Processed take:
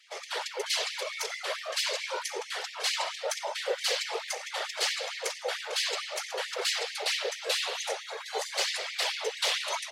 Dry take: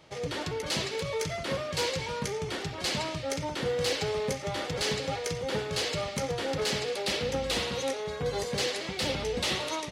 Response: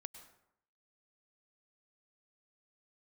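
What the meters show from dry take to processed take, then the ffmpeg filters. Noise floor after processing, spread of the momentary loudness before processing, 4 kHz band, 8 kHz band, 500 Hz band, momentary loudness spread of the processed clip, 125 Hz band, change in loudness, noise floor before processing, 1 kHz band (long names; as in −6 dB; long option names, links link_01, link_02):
−43 dBFS, 4 LU, +2.5 dB, +2.5 dB, −5.0 dB, 5 LU, below −40 dB, 0.0 dB, −38 dBFS, −0.5 dB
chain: -filter_complex "[0:a]asubboost=boost=11:cutoff=58,afftfilt=real='hypot(re,im)*cos(2*PI*random(0))':imag='hypot(re,im)*sin(2*PI*random(1))':win_size=512:overlap=0.75,acrossover=split=250|1500|5500[link_01][link_02][link_03][link_04];[link_01]volume=33dB,asoftclip=hard,volume=-33dB[link_05];[link_05][link_02][link_03][link_04]amix=inputs=4:normalize=0,afftfilt=real='re*gte(b*sr/1024,370*pow(1800/370,0.5+0.5*sin(2*PI*4.5*pts/sr)))':imag='im*gte(b*sr/1024,370*pow(1800/370,0.5+0.5*sin(2*PI*4.5*pts/sr)))':win_size=1024:overlap=0.75,volume=8.5dB"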